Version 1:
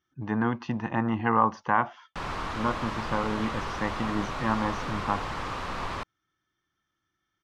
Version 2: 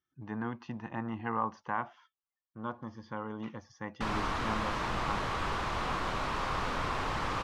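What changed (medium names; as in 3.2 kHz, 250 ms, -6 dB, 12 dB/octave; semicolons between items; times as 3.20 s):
speech -10.0 dB; background: entry +1.85 s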